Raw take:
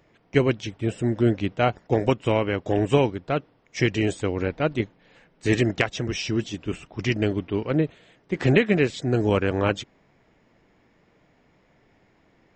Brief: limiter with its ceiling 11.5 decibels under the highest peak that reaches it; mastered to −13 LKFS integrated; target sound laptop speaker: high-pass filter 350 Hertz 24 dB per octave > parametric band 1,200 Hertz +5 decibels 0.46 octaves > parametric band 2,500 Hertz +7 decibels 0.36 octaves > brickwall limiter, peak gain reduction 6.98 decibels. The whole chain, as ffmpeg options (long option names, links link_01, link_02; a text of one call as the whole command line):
ffmpeg -i in.wav -af "alimiter=limit=-18dB:level=0:latency=1,highpass=frequency=350:width=0.5412,highpass=frequency=350:width=1.3066,equalizer=frequency=1200:width_type=o:width=0.46:gain=5,equalizer=frequency=2500:width_type=o:width=0.36:gain=7,volume=20dB,alimiter=limit=-0.5dB:level=0:latency=1" out.wav